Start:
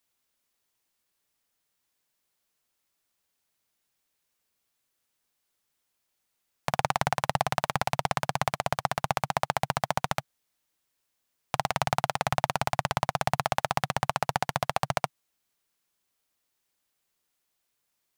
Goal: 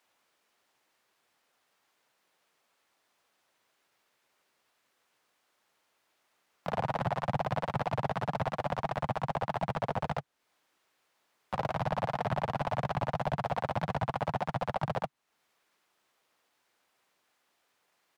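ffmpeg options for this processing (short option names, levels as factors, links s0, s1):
-filter_complex "[0:a]acrossover=split=250[s0][s1];[s1]acompressor=threshold=0.00794:ratio=2[s2];[s0][s2]amix=inputs=2:normalize=0,asplit=4[s3][s4][s5][s6];[s4]asetrate=29433,aresample=44100,atempo=1.49831,volume=0.251[s7];[s5]asetrate=37084,aresample=44100,atempo=1.18921,volume=0.708[s8];[s6]asetrate=52444,aresample=44100,atempo=0.840896,volume=0.355[s9];[s3][s7][s8][s9]amix=inputs=4:normalize=0,asplit=2[s10][s11];[s11]highpass=f=720:p=1,volume=20,asoftclip=type=tanh:threshold=0.299[s12];[s10][s12]amix=inputs=2:normalize=0,lowpass=f=1100:p=1,volume=0.501,volume=0.501"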